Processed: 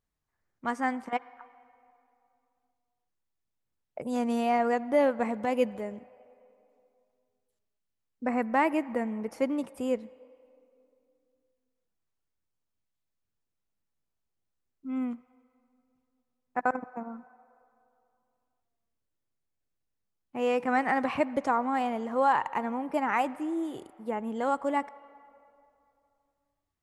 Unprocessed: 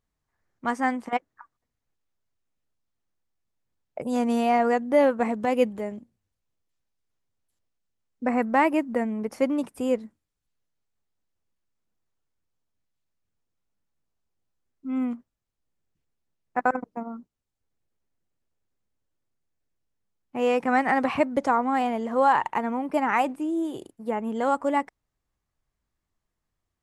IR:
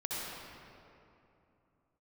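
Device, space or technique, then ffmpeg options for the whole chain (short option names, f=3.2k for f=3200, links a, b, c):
filtered reverb send: -filter_complex "[0:a]asplit=2[a][b];[b]highpass=500,lowpass=4.8k[c];[1:a]atrim=start_sample=2205[d];[c][d]afir=irnorm=-1:irlink=0,volume=-21.5dB[e];[a][e]amix=inputs=2:normalize=0,volume=-4.5dB"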